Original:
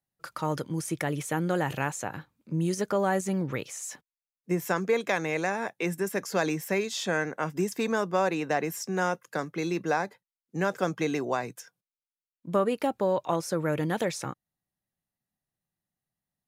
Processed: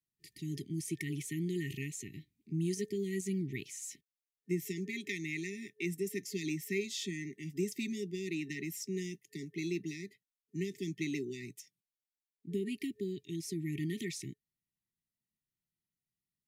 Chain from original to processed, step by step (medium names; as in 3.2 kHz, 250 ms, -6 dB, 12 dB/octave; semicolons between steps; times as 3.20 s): FFT band-reject 430–1800 Hz; trim -6 dB